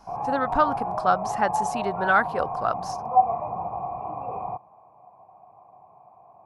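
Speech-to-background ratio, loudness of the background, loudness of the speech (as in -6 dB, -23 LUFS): 2.5 dB, -28.5 LUFS, -26.0 LUFS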